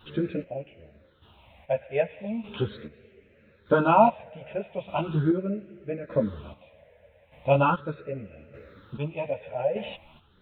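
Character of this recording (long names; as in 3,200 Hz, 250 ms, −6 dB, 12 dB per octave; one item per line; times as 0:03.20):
phaser sweep stages 6, 0.39 Hz, lowest notch 310–1,000 Hz
chopped level 0.82 Hz, depth 65%, duty 35%
a shimmering, thickened sound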